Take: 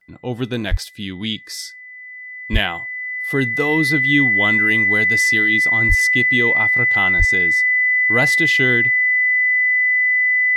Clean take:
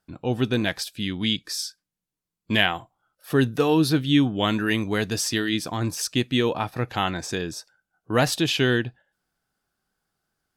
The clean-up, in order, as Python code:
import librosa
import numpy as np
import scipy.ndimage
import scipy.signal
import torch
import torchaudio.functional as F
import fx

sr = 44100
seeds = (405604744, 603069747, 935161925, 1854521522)

y = fx.notch(x, sr, hz=2000.0, q=30.0)
y = fx.fix_deplosive(y, sr, at_s=(0.7, 2.52, 5.88, 7.18))